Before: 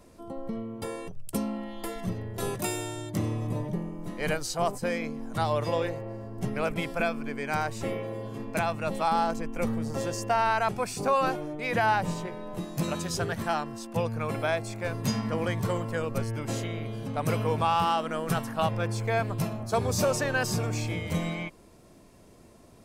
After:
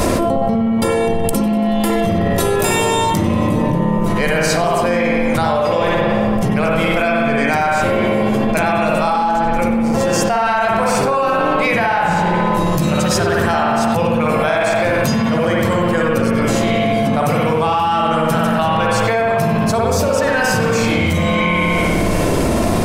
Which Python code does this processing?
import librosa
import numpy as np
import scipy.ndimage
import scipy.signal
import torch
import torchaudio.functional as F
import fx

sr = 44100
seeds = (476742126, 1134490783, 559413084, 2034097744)

y = fx.hum_notches(x, sr, base_hz=60, count=8)
y = fx.echo_split(y, sr, split_hz=1300.0, low_ms=212, high_ms=93, feedback_pct=52, wet_db=-16)
y = fx.rev_spring(y, sr, rt60_s=1.1, pass_ms=(57,), chirp_ms=65, drr_db=-3.0)
y = fx.env_flatten(y, sr, amount_pct=100)
y = y * 10.0 ** (1.5 / 20.0)